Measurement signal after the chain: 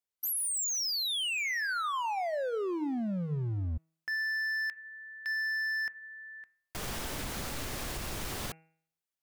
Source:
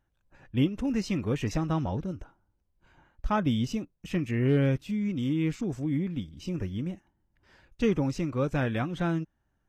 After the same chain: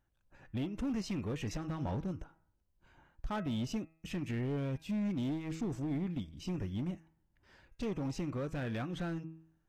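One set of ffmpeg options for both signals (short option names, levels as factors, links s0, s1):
-af "alimiter=limit=0.0708:level=0:latency=1:release=160,asoftclip=type=hard:threshold=0.0398,bandreject=f=161.2:t=h:w=4,bandreject=f=322.4:t=h:w=4,bandreject=f=483.6:t=h:w=4,bandreject=f=644.8:t=h:w=4,bandreject=f=806:t=h:w=4,bandreject=f=967.2:t=h:w=4,bandreject=f=1128.4:t=h:w=4,bandreject=f=1289.6:t=h:w=4,bandreject=f=1450.8:t=h:w=4,bandreject=f=1612:t=h:w=4,bandreject=f=1773.2:t=h:w=4,bandreject=f=1934.4:t=h:w=4,bandreject=f=2095.6:t=h:w=4,bandreject=f=2256.8:t=h:w=4,bandreject=f=2418:t=h:w=4,bandreject=f=2579.2:t=h:w=4,bandreject=f=2740.4:t=h:w=4,volume=0.708"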